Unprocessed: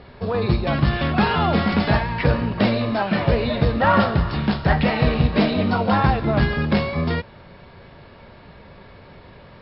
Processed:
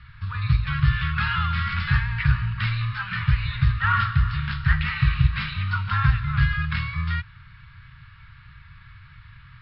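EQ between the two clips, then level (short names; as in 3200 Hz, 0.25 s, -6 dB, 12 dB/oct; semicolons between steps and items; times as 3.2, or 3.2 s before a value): elliptic band-stop 130–1300 Hz, stop band 40 dB; air absorption 250 m; +2.5 dB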